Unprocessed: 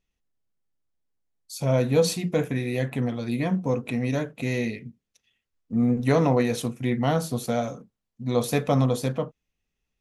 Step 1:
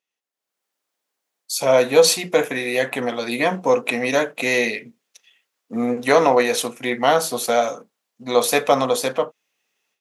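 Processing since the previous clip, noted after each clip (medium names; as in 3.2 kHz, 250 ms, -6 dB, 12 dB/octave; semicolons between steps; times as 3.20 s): high-pass 530 Hz 12 dB/octave; level rider gain up to 14 dB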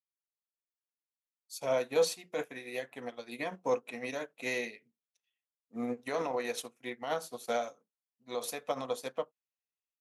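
peak limiter -11 dBFS, peak gain reduction 9 dB; upward expansion 2.5:1, over -31 dBFS; trim -6.5 dB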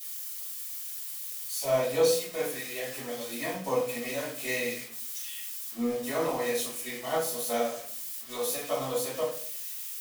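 zero-crossing glitches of -31 dBFS; reverberation RT60 0.50 s, pre-delay 3 ms, DRR -12 dB; trim -9 dB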